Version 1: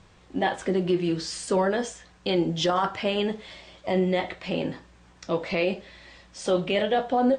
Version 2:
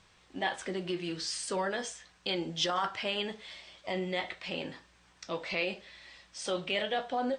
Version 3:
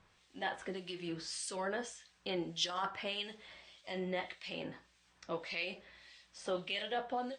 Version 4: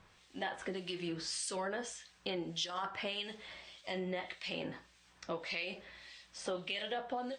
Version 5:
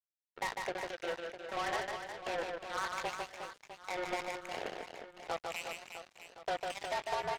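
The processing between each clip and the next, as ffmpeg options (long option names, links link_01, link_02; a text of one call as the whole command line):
ffmpeg -i in.wav -af "tiltshelf=frequency=920:gain=-6,bandreject=frequency=7000:width=17,volume=-7dB" out.wav
ffmpeg -i in.wav -filter_complex "[0:a]acrossover=split=2200[link_01][link_02];[link_01]aeval=exprs='val(0)*(1-0.7/2+0.7/2*cos(2*PI*1.7*n/s))':channel_layout=same[link_03];[link_02]aeval=exprs='val(0)*(1-0.7/2-0.7/2*cos(2*PI*1.7*n/s))':channel_layout=same[link_04];[link_03][link_04]amix=inputs=2:normalize=0,volume=-2.5dB" out.wav
ffmpeg -i in.wav -af "acompressor=threshold=-40dB:ratio=4,volume=4.5dB" out.wav
ffmpeg -i in.wav -af "highpass=frequency=190:width_type=q:width=0.5412,highpass=frequency=190:width_type=q:width=1.307,lowpass=frequency=2400:width_type=q:width=0.5176,lowpass=frequency=2400:width_type=q:width=0.7071,lowpass=frequency=2400:width_type=q:width=1.932,afreqshift=170,acrusher=bits=5:mix=0:aa=0.5,aecho=1:1:150|360|654|1066|1642:0.631|0.398|0.251|0.158|0.1,volume=1.5dB" out.wav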